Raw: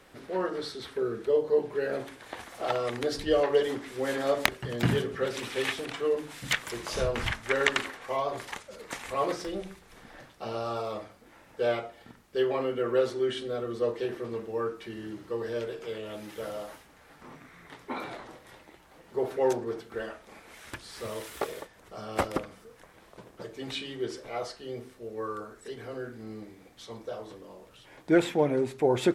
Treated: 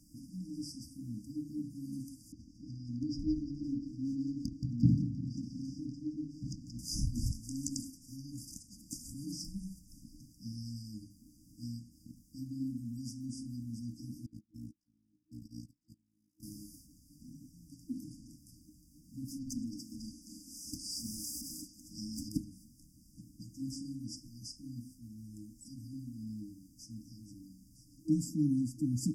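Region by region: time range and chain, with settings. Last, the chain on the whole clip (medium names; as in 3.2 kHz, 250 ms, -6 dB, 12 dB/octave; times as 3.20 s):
2.32–6.79 s: distance through air 230 m + modulated delay 174 ms, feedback 63%, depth 177 cents, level -12 dB
14.26–16.43 s: gate -34 dBFS, range -30 dB + AM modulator 56 Hz, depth 55%
19.28–22.29 s: comb 3.9 ms, depth 39% + compression 10:1, threshold -29 dBFS + overdrive pedal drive 19 dB, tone 4.2 kHz, clips at -20.5 dBFS
whole clip: FFT band-reject 320–4700 Hz; dynamic bell 610 Hz, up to +4 dB, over -56 dBFS, Q 1.3; trim +1 dB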